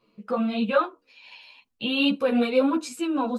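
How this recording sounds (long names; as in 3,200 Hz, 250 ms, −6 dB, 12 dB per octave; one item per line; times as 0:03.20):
tremolo triangle 3.1 Hz, depth 40%
a shimmering, thickened sound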